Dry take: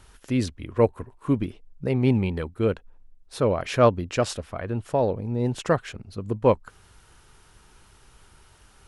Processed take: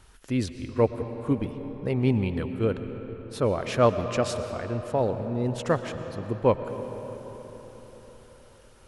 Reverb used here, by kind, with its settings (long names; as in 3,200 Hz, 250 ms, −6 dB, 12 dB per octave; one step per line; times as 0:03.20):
comb and all-pass reverb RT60 4.7 s, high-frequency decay 0.55×, pre-delay 75 ms, DRR 8.5 dB
level −2.5 dB